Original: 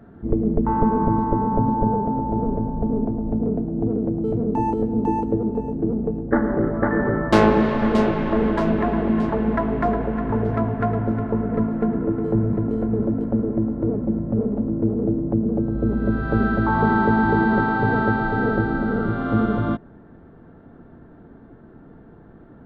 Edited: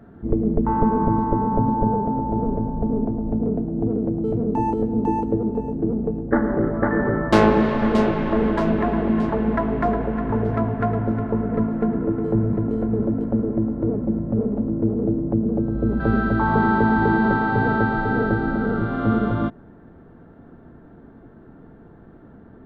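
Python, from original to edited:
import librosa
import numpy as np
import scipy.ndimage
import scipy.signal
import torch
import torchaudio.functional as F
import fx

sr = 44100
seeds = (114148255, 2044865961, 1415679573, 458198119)

y = fx.edit(x, sr, fx.cut(start_s=16.0, length_s=0.27), tone=tone)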